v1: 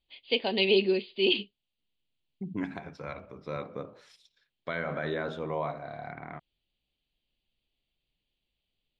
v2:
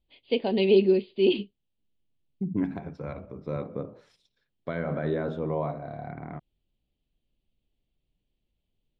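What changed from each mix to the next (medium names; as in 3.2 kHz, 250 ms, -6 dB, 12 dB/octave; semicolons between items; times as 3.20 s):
master: add tilt shelf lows +8 dB, about 830 Hz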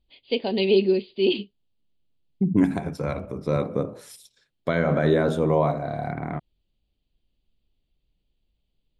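second voice +8.0 dB; master: remove distance through air 210 m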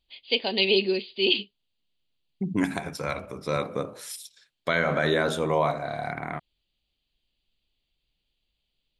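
master: add tilt shelf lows -8 dB, about 830 Hz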